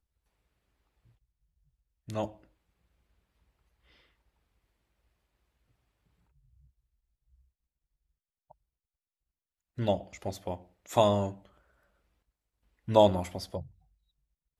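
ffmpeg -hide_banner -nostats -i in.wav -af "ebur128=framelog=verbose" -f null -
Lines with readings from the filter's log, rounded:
Integrated loudness:
  I:         -29.8 LUFS
  Threshold: -42.5 LUFS
Loudness range:
  LRA:        15.4 LU
  Threshold: -54.7 LUFS
  LRA low:   -45.5 LUFS
  LRA high:  -30.1 LUFS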